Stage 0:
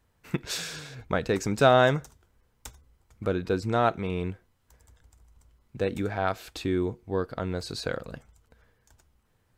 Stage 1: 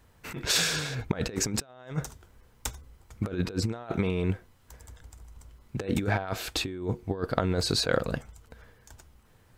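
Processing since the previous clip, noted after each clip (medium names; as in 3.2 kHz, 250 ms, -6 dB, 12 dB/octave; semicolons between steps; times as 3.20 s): compressor with a negative ratio -32 dBFS, ratio -0.5; trim +3.5 dB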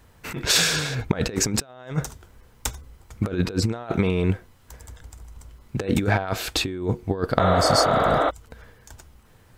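spectral replace 7.43–8.27 s, 260–4300 Hz before; trim +6 dB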